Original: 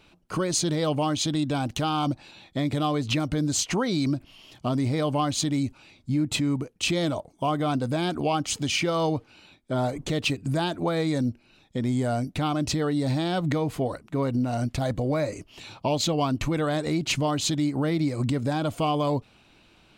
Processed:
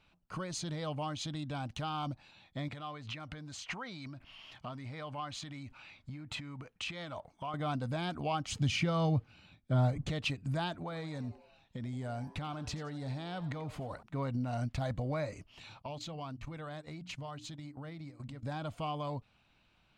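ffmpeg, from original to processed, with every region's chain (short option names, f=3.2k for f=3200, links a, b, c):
-filter_complex "[0:a]asettb=1/sr,asplit=3[a][b][c];[a]atrim=end=2.684[d];[b]atrim=start=2.68:end=7.54,asetpts=PTS-STARTPTS,afade=t=in:d=0.004:c=qsin,afade=t=out:st=4.856:d=0.004:c=qsin,acompressor=threshold=-33dB:ratio=6:attack=3.2:release=140:knee=1:detection=peak,equalizer=f=1.7k:t=o:w=2.8:g=9[e];[c]atrim=start=7.536[f];[d][e]acrossfade=d=0.004:c1=hsin:c2=qsin[g];[g][f]acrossfade=d=0.004:c1=qsin:c2=hsin,asettb=1/sr,asplit=3[h][i][j];[h]atrim=end=8.514[k];[i]atrim=start=8.51:end=10.1,asetpts=PTS-STARTPTS,afade=t=in:d=0.004:c=qsin,afade=t=out:st=1.586:d=0.004:c=qsin,equalizer=f=110:t=o:w=2.4:g=10,bandreject=f=940:w=12[l];[j]atrim=start=10.096[m];[k][l]acrossfade=d=0.004:c1=hsin:c2=qsin[n];[n][m]acrossfade=d=0.004:c1=qsin:c2=hsin,asettb=1/sr,asplit=3[o][p][q];[o]atrim=end=10.774[r];[p]atrim=start=10.77:end=14.03,asetpts=PTS-STARTPTS,afade=t=in:d=0.004:c=qsin,afade=t=out:st=3.256:d=0.004:c=qsin,acompressor=threshold=-26dB:ratio=6:attack=3.2:release=140:knee=1:detection=peak,asplit=5[s][t][u][v][w];[t]adelay=87,afreqshift=140,volume=-16.5dB[x];[u]adelay=174,afreqshift=280,volume=-22.9dB[y];[v]adelay=261,afreqshift=420,volume=-29.3dB[z];[w]adelay=348,afreqshift=560,volume=-35.6dB[aa];[s][x][y][z][aa]amix=inputs=5:normalize=0,atrim=end_sample=143766[ab];[q]atrim=start=14.026[ac];[r][ab]acrossfade=d=0.004:c1=hsin:c2=qsin[ad];[ad][ac]acrossfade=d=0.004:c1=qsin:c2=hsin,asettb=1/sr,asplit=3[ae][af][ag];[ae]atrim=end=15.824[ah];[af]atrim=start=15.82:end=18.43,asetpts=PTS-STARTPTS,afade=t=in:d=0.004:c=qsin,afade=t=out:st=2.606:d=0.004:c=qsin,agate=range=-14dB:threshold=-28dB:ratio=16:release=100:detection=peak,bandreject=f=60:t=h:w=6,bandreject=f=120:t=h:w=6,bandreject=f=180:t=h:w=6,bandreject=f=240:t=h:w=6,bandreject=f=300:t=h:w=6,acompressor=threshold=-31dB:ratio=3:attack=3.2:release=140:knee=1:detection=peak[ai];[ag]atrim=start=18.426[aj];[ah][ai]acrossfade=d=0.004:c1=hsin:c2=qsin[ak];[ak][aj]acrossfade=d=0.004:c1=qsin:c2=hsin,equalizer=f=360:t=o:w=1.2:g=-10,dynaudnorm=f=630:g=11:m=3dB,aemphasis=mode=reproduction:type=50kf,volume=-8.5dB"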